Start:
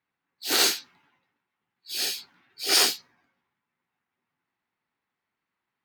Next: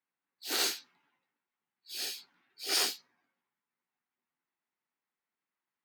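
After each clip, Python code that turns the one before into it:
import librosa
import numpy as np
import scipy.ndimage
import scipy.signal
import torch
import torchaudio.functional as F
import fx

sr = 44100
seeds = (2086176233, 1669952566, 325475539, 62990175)

y = scipy.signal.sosfilt(scipy.signal.butter(2, 180.0, 'highpass', fs=sr, output='sos'), x)
y = F.gain(torch.from_numpy(y), -9.0).numpy()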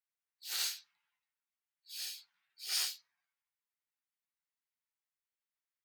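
y = fx.tone_stack(x, sr, knobs='10-0-10')
y = F.gain(torch.from_numpy(y), -3.5).numpy()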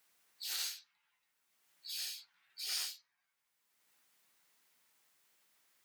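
y = fx.band_squash(x, sr, depth_pct=70)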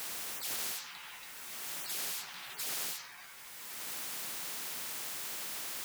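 y = fx.spectral_comp(x, sr, ratio=10.0)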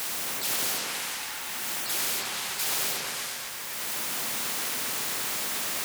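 y = fx.echo_opening(x, sr, ms=119, hz=750, octaves=2, feedback_pct=70, wet_db=0)
y = F.gain(torch.from_numpy(y), 8.5).numpy()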